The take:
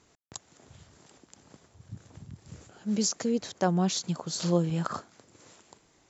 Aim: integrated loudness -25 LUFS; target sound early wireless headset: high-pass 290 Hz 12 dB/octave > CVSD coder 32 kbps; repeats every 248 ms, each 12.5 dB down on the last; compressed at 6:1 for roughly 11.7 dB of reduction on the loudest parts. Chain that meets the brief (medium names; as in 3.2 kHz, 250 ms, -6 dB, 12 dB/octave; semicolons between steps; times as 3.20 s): compression 6:1, threshold -33 dBFS; high-pass 290 Hz 12 dB/octave; feedback delay 248 ms, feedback 24%, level -12.5 dB; CVSD coder 32 kbps; trim +16 dB